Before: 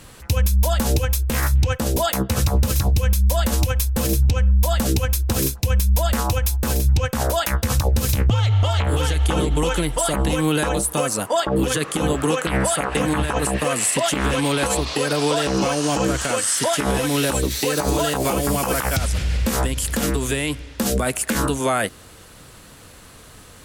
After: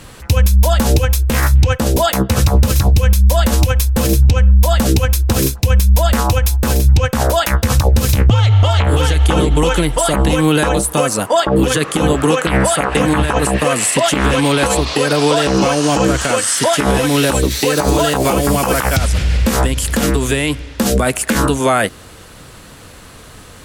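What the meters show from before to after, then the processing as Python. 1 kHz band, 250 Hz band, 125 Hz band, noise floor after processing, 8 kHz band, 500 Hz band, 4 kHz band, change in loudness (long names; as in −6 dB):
+7.0 dB, +7.0 dB, +7.0 dB, −38 dBFS, +4.0 dB, +7.0 dB, +6.0 dB, +6.5 dB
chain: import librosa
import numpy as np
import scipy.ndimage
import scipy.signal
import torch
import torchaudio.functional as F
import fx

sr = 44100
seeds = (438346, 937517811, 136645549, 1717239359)

y = fx.high_shelf(x, sr, hz=6600.0, db=-4.5)
y = y * librosa.db_to_amplitude(7.0)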